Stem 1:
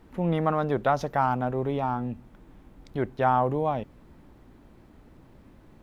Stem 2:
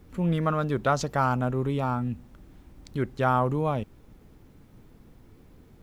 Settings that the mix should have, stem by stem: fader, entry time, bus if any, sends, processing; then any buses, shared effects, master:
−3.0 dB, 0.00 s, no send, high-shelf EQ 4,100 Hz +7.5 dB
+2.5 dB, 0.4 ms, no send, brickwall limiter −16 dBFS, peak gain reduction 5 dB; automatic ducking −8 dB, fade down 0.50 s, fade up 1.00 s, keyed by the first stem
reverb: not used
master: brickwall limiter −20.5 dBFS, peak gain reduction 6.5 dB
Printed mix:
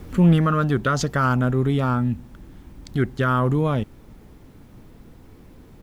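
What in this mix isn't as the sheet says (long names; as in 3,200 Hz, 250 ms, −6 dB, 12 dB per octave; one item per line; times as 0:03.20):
stem 2 +2.5 dB → +14.0 dB
master: missing brickwall limiter −20.5 dBFS, peak gain reduction 6.5 dB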